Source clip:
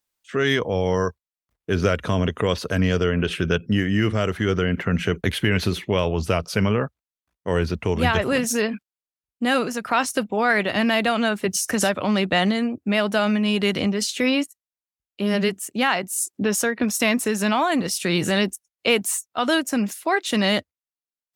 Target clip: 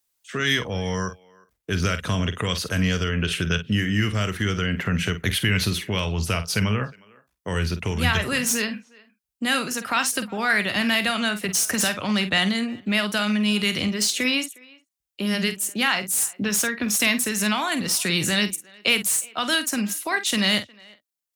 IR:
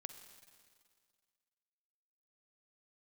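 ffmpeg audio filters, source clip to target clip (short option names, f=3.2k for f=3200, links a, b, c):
-filter_complex "[0:a]highshelf=f=4.4k:g=8.5,acrossover=split=220|1100|4200[a][b][c][d];[b]acompressor=threshold=-32dB:ratio=6[e];[d]asoftclip=type=hard:threshold=-20.5dB[f];[a][e][c][f]amix=inputs=4:normalize=0,asplit=2[g][h];[h]adelay=48,volume=-11dB[i];[g][i]amix=inputs=2:normalize=0,asplit=2[j][k];[k]adelay=360,highpass=300,lowpass=3.4k,asoftclip=type=hard:threshold=-14.5dB,volume=-24dB[l];[j][l]amix=inputs=2:normalize=0"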